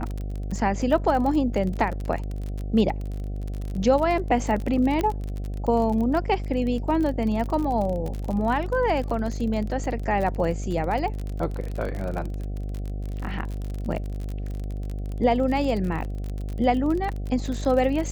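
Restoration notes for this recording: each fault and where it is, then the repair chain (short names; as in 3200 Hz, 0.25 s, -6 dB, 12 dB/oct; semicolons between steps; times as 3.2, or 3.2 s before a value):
buzz 50 Hz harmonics 15 -30 dBFS
crackle 36/s -29 dBFS
5.01 pop -13 dBFS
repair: de-click; de-hum 50 Hz, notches 15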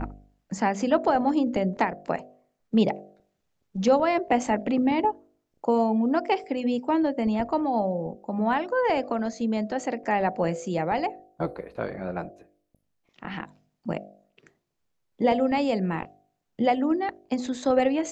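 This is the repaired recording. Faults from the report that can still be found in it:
none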